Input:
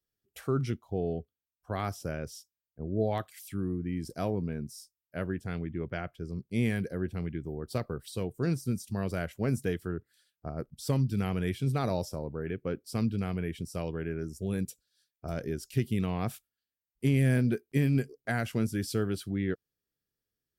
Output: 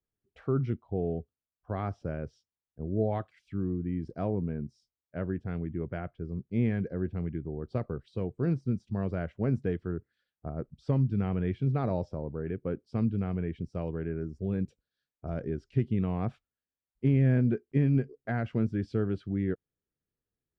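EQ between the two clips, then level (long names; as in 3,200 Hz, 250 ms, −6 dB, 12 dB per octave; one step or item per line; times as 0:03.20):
head-to-tape spacing loss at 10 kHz 42 dB
+2.0 dB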